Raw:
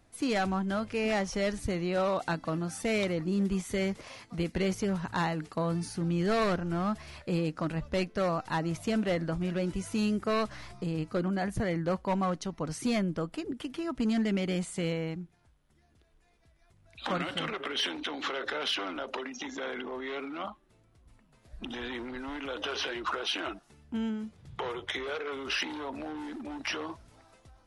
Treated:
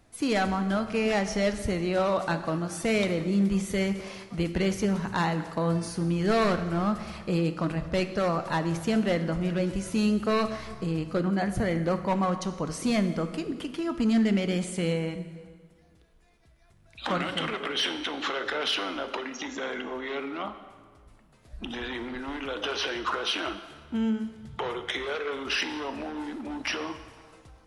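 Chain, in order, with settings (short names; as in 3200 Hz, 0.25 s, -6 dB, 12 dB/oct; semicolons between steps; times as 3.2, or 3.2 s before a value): plate-style reverb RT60 1.7 s, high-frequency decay 0.8×, DRR 9 dB; gain +3 dB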